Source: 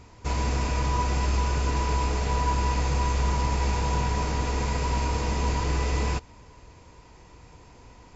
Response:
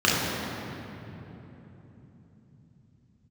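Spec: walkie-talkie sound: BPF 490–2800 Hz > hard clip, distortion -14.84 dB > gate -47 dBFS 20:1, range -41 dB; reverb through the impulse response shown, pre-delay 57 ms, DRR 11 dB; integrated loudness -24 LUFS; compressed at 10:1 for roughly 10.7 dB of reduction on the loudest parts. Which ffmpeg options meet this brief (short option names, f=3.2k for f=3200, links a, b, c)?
-filter_complex "[0:a]acompressor=threshold=-32dB:ratio=10,asplit=2[a][b];[1:a]atrim=start_sample=2205,adelay=57[c];[b][c]afir=irnorm=-1:irlink=0,volume=-30.5dB[d];[a][d]amix=inputs=2:normalize=0,highpass=490,lowpass=2.8k,asoftclip=type=hard:threshold=-39dB,agate=range=-41dB:threshold=-47dB:ratio=20,volume=19.5dB"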